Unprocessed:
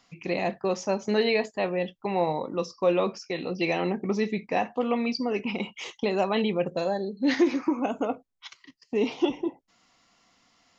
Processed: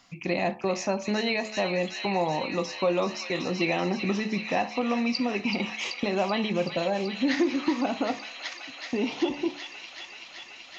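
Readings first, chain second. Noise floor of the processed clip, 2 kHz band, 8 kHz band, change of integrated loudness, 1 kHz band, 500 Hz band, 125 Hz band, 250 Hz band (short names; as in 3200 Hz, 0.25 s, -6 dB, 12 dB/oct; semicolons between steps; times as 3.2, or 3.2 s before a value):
-46 dBFS, +3.0 dB, n/a, -0.5 dB, +0.5 dB, -2.0 dB, +1.5 dB, 0.0 dB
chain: on a send: thin delay 0.381 s, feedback 83%, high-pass 2000 Hz, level -7 dB; on the sum: compressor 2:1, threshold -28 dBFS, peak gain reduction 7 dB; bell 440 Hz -8.5 dB 0.24 oct; de-hum 72.43 Hz, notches 17; gain +4.5 dB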